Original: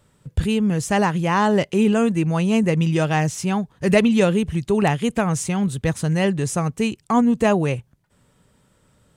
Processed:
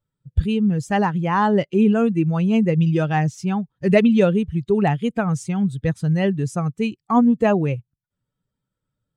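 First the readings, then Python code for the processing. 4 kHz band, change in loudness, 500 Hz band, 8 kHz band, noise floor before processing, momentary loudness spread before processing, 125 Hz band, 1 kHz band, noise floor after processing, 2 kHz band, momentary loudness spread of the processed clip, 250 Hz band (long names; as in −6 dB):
−5.5 dB, +0.5 dB, 0.0 dB, −10.5 dB, −61 dBFS, 6 LU, +1.0 dB, 0.0 dB, −83 dBFS, −2.5 dB, 8 LU, +1.0 dB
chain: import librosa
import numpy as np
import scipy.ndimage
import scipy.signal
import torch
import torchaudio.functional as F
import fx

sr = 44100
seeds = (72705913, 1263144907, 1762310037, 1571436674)

y = fx.bin_expand(x, sr, power=1.5)
y = fx.lowpass(y, sr, hz=2100.0, slope=6)
y = F.gain(torch.from_numpy(y), 3.0).numpy()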